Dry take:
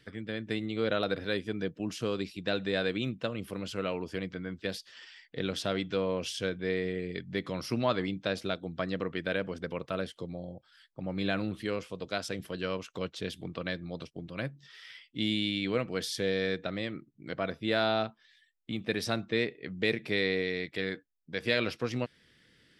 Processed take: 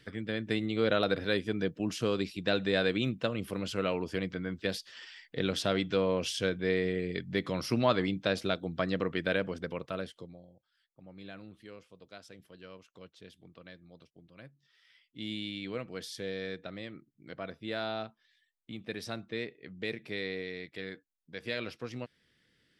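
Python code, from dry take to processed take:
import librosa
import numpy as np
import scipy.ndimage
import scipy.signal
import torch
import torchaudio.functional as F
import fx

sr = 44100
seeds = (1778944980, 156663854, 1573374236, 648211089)

y = fx.gain(x, sr, db=fx.line((9.3, 2.0), (10.16, -4.5), (10.5, -16.0), (14.85, -16.0), (15.32, -7.5)))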